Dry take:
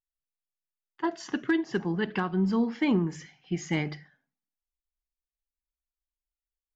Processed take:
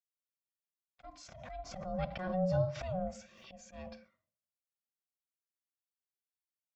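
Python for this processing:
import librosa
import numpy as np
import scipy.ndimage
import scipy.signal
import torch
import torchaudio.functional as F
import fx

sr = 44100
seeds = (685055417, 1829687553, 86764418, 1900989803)

y = scipy.signal.sosfilt(scipy.signal.butter(4, 150.0, 'highpass', fs=sr, output='sos'), x)
y = fx.peak_eq(y, sr, hz=1800.0, db=-7.5, octaves=2.3)
y = fx.auto_swell(y, sr, attack_ms=287.0)
y = y * np.sin(2.0 * np.pi * 370.0 * np.arange(len(y)) / sr)
y = fx.notch_comb(y, sr, f0_hz=430.0)
y = fx.pre_swell(y, sr, db_per_s=45.0, at=(1.04, 3.69))
y = y * 10.0 ** (-1.5 / 20.0)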